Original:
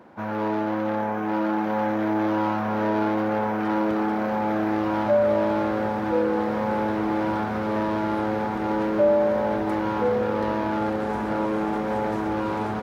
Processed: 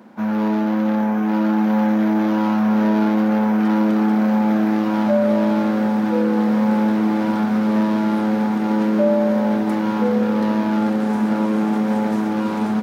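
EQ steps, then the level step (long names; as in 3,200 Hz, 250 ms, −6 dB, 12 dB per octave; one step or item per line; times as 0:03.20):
high-pass filter 140 Hz 12 dB per octave
parametric band 220 Hz +14.5 dB 0.41 octaves
high-shelf EQ 3,300 Hz +9.5 dB
0.0 dB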